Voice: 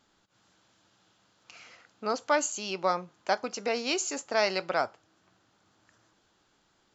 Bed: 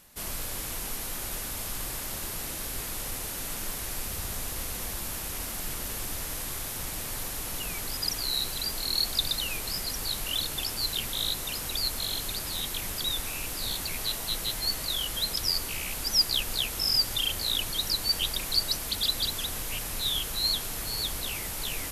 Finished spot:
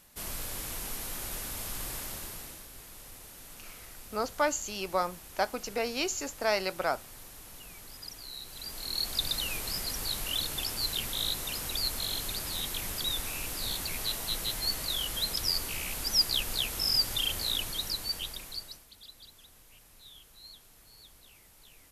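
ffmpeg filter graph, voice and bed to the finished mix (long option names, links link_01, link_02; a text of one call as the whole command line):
ffmpeg -i stem1.wav -i stem2.wav -filter_complex "[0:a]adelay=2100,volume=-2dB[link_01];[1:a]volume=9dB,afade=type=out:start_time=1.98:duration=0.69:silence=0.281838,afade=type=in:start_time=8.45:duration=0.92:silence=0.251189,afade=type=out:start_time=17.39:duration=1.47:silence=0.0841395[link_02];[link_01][link_02]amix=inputs=2:normalize=0" out.wav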